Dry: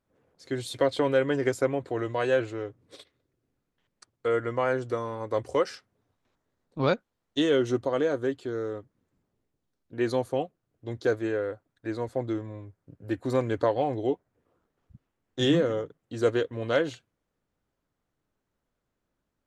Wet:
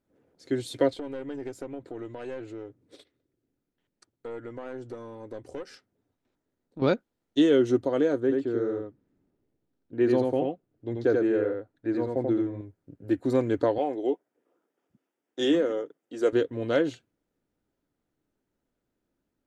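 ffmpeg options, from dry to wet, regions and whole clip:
-filter_complex "[0:a]asettb=1/sr,asplit=3[a][b][c];[a]atrim=end=0.934[d];[b]atrim=start=0.93:end=6.82,asetpts=PTS-STARTPTS,afade=t=in:d=0.004:c=qsin,afade=t=out:st=5.886:d=0.004:c=qsin,aeval=exprs='(tanh(8.91*val(0)+0.65)-tanh(0.65))/8.91':c=same,acompressor=threshold=-41dB:ratio=2:attack=3.2:release=140:knee=1:detection=peak[e];[c]atrim=start=6.816[f];[d][e]acrossfade=d=0.004:c1=hsin:c2=qsin[g];[g][f]acrossfade=d=0.004:c1=qsin:c2=hsin,asettb=1/sr,asplit=3[h][i][j];[h]atrim=end=8.204[k];[i]atrim=start=8.2:end=12.61,asetpts=PTS-STARTPTS,afade=t=in:d=0.004:c=qsin,afade=t=out:st=4.406:d=0.004:c=qsin,lowpass=f=2.8k:p=1,aecho=1:1:86:0.708,atrim=end_sample=194481[l];[j]atrim=start=12.606[m];[k][l]acrossfade=d=0.004:c1=hsin:c2=qsin[n];[n][m]acrossfade=d=0.004:c1=qsin:c2=hsin,asettb=1/sr,asplit=3[o][p][q];[o]atrim=end=13.784[r];[p]atrim=start=13.78:end=16.33,asetpts=PTS-STARTPTS,afade=t=in:d=0.004:c=qsin,afade=t=out:st=2.546:d=0.004:c=qsin,highpass=360,bandreject=f=4.1k:w=6.9[s];[q]atrim=start=16.326[t];[r][s]acrossfade=d=0.004:c1=hsin:c2=qsin[u];[u][t]acrossfade=d=0.004:c1=qsin:c2=hsin,equalizer=f=300:w=1.2:g=8,bandreject=f=1.1k:w=9.8,volume=-2.5dB"

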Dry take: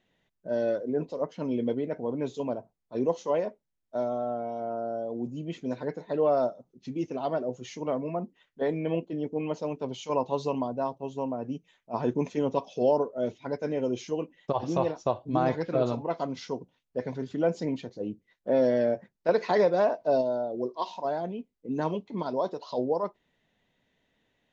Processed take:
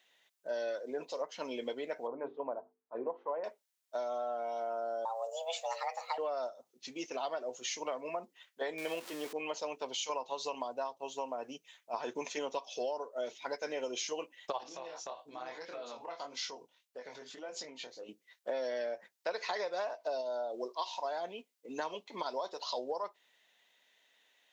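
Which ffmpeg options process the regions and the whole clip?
-filter_complex "[0:a]asettb=1/sr,asplit=3[a][b][c];[a]atrim=end=2.074[d];[b]atrim=start=2.07:end=3.44,asetpts=PTS-STARTPTS,afade=t=in:d=0.004:c=qsin,afade=t=out:st=1.366:d=0.004:c=qsin,lowpass=f=1.4k:w=0.5412,lowpass=f=1.4k:w=1.3066,bandreject=f=50:t=h:w=6,bandreject=f=100:t=h:w=6,bandreject=f=150:t=h:w=6,bandreject=f=200:t=h:w=6,bandreject=f=250:t=h:w=6,bandreject=f=300:t=h:w=6,bandreject=f=350:t=h:w=6,bandreject=f=400:t=h:w=6,bandreject=f=450:t=h:w=6[e];[c]atrim=start=3.436[f];[d][e]acrossfade=d=0.004:c1=hsin:c2=qsin[g];[g][f]acrossfade=d=0.004:c1=qsin:c2=hsin,asettb=1/sr,asplit=3[h][i][j];[h]atrim=end=5.054[k];[i]atrim=start=5.05:end=6.18,asetpts=PTS-STARTPTS,afade=t=in:d=0.004:c=qsin,afade=t=out:st=1.126:d=0.004:c=qsin,highshelf=f=4.5k:g=7,bandreject=f=50:t=h:w=6,bandreject=f=100:t=h:w=6,bandreject=f=150:t=h:w=6,bandreject=f=200:t=h:w=6,bandreject=f=250:t=h:w=6,bandreject=f=300:t=h:w=6,bandreject=f=350:t=h:w=6,afreqshift=330[l];[j]atrim=start=6.176[m];[k][l]acrossfade=d=0.004:c1=hsin:c2=qsin[n];[n][m]acrossfade=d=0.004:c1=qsin:c2=hsin,asettb=1/sr,asplit=3[o][p][q];[o]atrim=end=8.784[r];[p]atrim=start=8.78:end=9.33,asetpts=PTS-STARTPTS,afade=t=in:d=0.004:c=qsin,afade=t=out:st=0.546:d=0.004:c=qsin,aeval=exprs='val(0)+0.5*0.00668*sgn(val(0))':c=same,acompressor=mode=upward:threshold=-36dB:ratio=2.5:attack=3.2:release=140:knee=2.83:detection=peak[s];[q]atrim=start=9.326[t];[r][s]acrossfade=d=0.004:c1=hsin:c2=qsin[u];[u][t]acrossfade=d=0.004:c1=qsin:c2=hsin,asettb=1/sr,asplit=3[v][w][x];[v]atrim=end=14.634[y];[w]atrim=start=14.63:end=18.09,asetpts=PTS-STARTPTS,afade=t=in:d=0.004:c=qsin,afade=t=out:st=3.456:d=0.004:c=qsin,flanger=delay=20:depth=4.4:speed=1.7,acompressor=threshold=-37dB:ratio=6:attack=3.2:release=140:knee=1:detection=peak[z];[x]atrim=start=18.086[aa];[y][z]acrossfade=d=0.004:c1=hsin:c2=qsin[ab];[ab][aa]acrossfade=d=0.004:c1=qsin:c2=hsin,highpass=640,highshelf=f=2.4k:g=10.5,acompressor=threshold=-34dB:ratio=10,volume=1dB"

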